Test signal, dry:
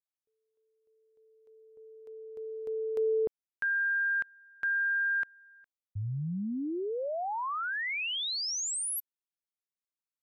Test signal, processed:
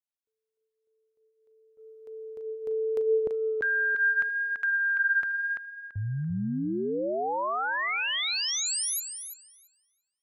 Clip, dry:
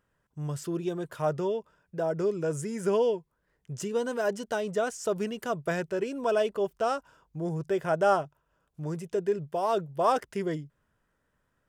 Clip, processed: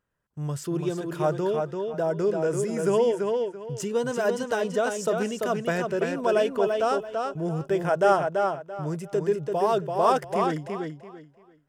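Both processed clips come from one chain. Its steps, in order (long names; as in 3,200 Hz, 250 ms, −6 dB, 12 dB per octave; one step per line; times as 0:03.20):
noise gate −53 dBFS, range −9 dB
on a send: tape delay 338 ms, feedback 26%, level −3.5 dB, low-pass 5,900 Hz
on the sum: level +3 dB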